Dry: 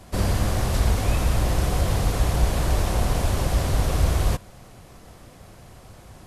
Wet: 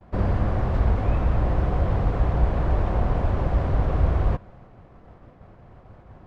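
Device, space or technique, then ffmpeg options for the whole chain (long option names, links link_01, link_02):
hearing-loss simulation: -af "lowpass=1500,agate=range=-33dB:threshold=-43dB:ratio=3:detection=peak"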